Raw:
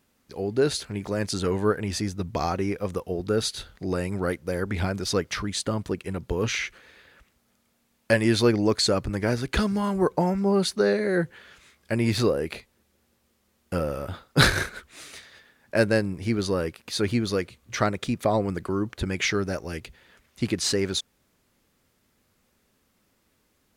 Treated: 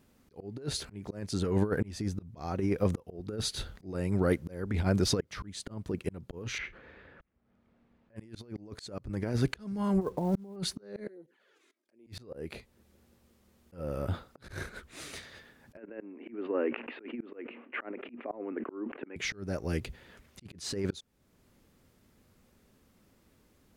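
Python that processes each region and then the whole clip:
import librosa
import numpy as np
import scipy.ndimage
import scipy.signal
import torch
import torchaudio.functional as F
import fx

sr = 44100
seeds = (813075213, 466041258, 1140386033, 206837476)

y = fx.chain(x, sr, fx.lowpass(hz=2100.0, slope=12),
    fx.doubler(ms=37.0, db=-14.0), at=(6.58, 8.16))
y = fx.chain(y, sr, fx.lowpass(hz=1300.0, slope=12),
    fx.quant_companded(bits=6), at=(10.01, 10.56))
y = fx.chain(y, sr, fx.env_flanger(rest_ms=3.5, full_db=-20.5),
    fx.level_steps(step_db=20),
    fx.ladder_highpass(hz=260.0, resonance_pct=40), at=(11.07, 12.07))
y = fx.chain(y, sr, fx.cheby1_bandpass(low_hz=240.0, high_hz=2800.0, order=5),
    fx.sustainer(db_per_s=110.0), at=(15.77, 19.16))
y = fx.tilt_shelf(y, sr, db=4.0, hz=640.0)
y = fx.over_compress(y, sr, threshold_db=-24.0, ratio=-0.5)
y = fx.auto_swell(y, sr, attack_ms=559.0)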